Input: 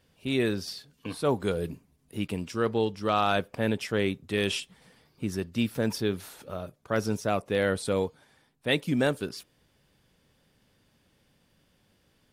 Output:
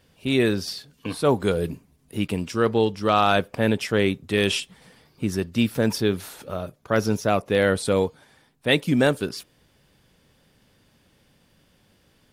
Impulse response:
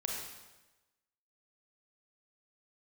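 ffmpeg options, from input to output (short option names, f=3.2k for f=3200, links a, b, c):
-filter_complex "[0:a]asettb=1/sr,asplit=3[a][b][c];[a]atrim=end=6.794[d];[b]atrim=start=6.79:end=7.5,asetpts=PTS-STARTPTS,afade=t=in:d=0.004:c=qsin,afade=t=out:st=0.706:d=0.004:c=qsin,equalizer=f=8.3k:w=7.4:g=-10[e];[c]atrim=start=7.496[f];[d][e]acrossfade=d=0.004:c1=hsin:c2=qsin[g];[g][f]acrossfade=d=0.004:c1=qsin:c2=hsin,volume=6dB"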